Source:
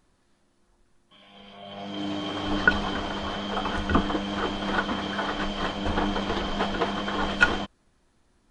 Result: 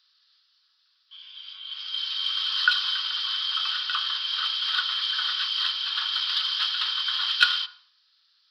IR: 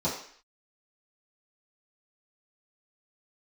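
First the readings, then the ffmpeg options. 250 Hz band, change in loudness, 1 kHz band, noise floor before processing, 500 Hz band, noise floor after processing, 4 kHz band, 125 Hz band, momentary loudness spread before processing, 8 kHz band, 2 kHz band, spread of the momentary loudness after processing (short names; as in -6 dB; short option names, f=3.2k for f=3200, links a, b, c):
under -40 dB, +3.0 dB, -6.0 dB, -67 dBFS, under -40 dB, -67 dBFS, +12.0 dB, under -40 dB, 9 LU, n/a, -1.0 dB, 11 LU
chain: -filter_complex "[0:a]asuperpass=centerf=3100:order=12:qfactor=0.51,asplit=2[a][b];[1:a]atrim=start_sample=2205,highshelf=f=2.2k:g=-9[c];[b][c]afir=irnorm=-1:irlink=0,volume=-13.5dB[d];[a][d]amix=inputs=2:normalize=0,aresample=11025,aresample=44100,aexciter=amount=6.4:drive=8.2:freq=3.3k,volume=-1dB"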